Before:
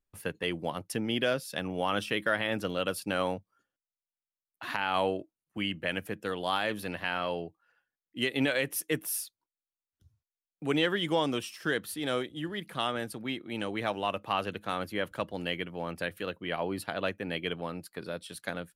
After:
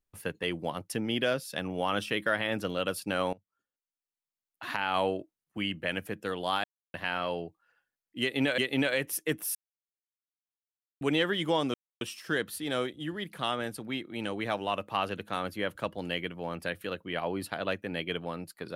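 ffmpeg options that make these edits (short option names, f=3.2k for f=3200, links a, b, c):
-filter_complex "[0:a]asplit=8[a][b][c][d][e][f][g][h];[a]atrim=end=3.33,asetpts=PTS-STARTPTS,afade=t=out:st=3.326:d=0.004:c=hsin:silence=0.105925[i];[b]atrim=start=3.33:end=6.64,asetpts=PTS-STARTPTS,afade=t=in:d=1.35:silence=0.105925,afade=t=out:st=3.306:d=0.004:c=hsin[j];[c]atrim=start=6.64:end=6.94,asetpts=PTS-STARTPTS,volume=0[k];[d]atrim=start=6.94:end=8.582,asetpts=PTS-STARTPTS,afade=t=in:d=0.004:c=hsin[l];[e]atrim=start=8.208:end=9.18,asetpts=PTS-STARTPTS,afade=t=out:st=0.968:d=0.004:c=hsin[m];[f]atrim=start=9.18:end=10.64,asetpts=PTS-STARTPTS,volume=0[n];[g]atrim=start=10.64:end=11.37,asetpts=PTS-STARTPTS,afade=t=in:d=0.004:c=hsin,afade=t=out:st=0.726:d=0.004:c=hsin,apad=pad_dur=0.27[o];[h]atrim=start=11.37,asetpts=PTS-STARTPTS,afade=t=in:d=0.004:c=hsin[p];[i][j][k][l]concat=n=4:v=0:a=1[q];[m][n][o][p]concat=n=4:v=0:a=1[r];[q][r]acrossfade=d=0.004:c1=hsin:c2=hsin"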